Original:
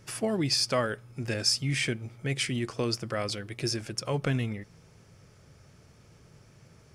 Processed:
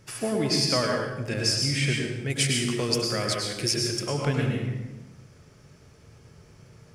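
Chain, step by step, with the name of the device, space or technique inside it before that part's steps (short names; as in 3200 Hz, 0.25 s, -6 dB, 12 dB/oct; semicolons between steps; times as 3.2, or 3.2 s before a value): 2.3–3.95 high shelf 4900 Hz +11 dB; bathroom (reverb RT60 1.0 s, pre-delay 94 ms, DRR -0.5 dB)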